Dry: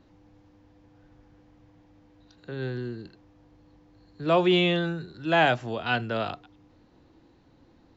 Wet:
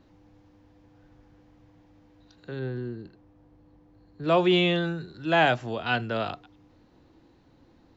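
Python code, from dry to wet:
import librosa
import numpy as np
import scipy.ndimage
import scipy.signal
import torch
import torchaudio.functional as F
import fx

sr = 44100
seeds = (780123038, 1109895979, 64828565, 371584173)

y = fx.high_shelf(x, sr, hz=2000.0, db=-10.5, at=(2.59, 4.24))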